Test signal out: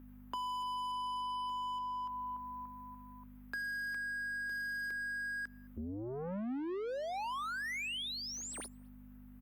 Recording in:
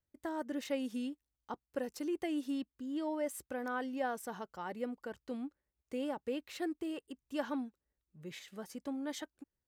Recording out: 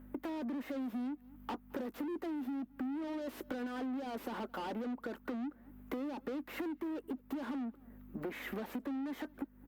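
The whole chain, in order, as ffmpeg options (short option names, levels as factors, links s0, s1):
-filter_complex "[0:a]firequalizer=gain_entry='entry(220,0);entry(430,-5);entry(1300,-3);entry(3100,-15);entry(4600,-23);entry(9700,-9);entry(14000,12)':delay=0.05:min_phase=1,asplit=2[s0][s1];[s1]highpass=f=720:p=1,volume=89.1,asoftclip=type=tanh:threshold=0.0501[s2];[s0][s2]amix=inputs=2:normalize=0,lowpass=f=1800:p=1,volume=0.501,acrossover=split=350|430|6200[s3][s4][s5][s6];[s3]highpass=f=90:p=1[s7];[s4]acontrast=36[s8];[s5]asoftclip=type=hard:threshold=0.015[s9];[s6]flanger=delay=16:depth=2.1:speed=0.71[s10];[s7][s8][s9][s10]amix=inputs=4:normalize=0,asplit=2[s11][s12];[s12]adelay=215.7,volume=0.0316,highshelf=f=4000:g=-4.85[s13];[s11][s13]amix=inputs=2:normalize=0,aeval=exprs='val(0)+0.00316*(sin(2*PI*50*n/s)+sin(2*PI*2*50*n/s)/2+sin(2*PI*3*50*n/s)/3+sin(2*PI*4*50*n/s)/4+sin(2*PI*5*50*n/s)/5)':c=same,lowshelf=f=190:t=q:w=3:g=-7.5,acompressor=threshold=0.00891:ratio=6,volume=1.41" -ar 48000 -c:a libopus -b:a 64k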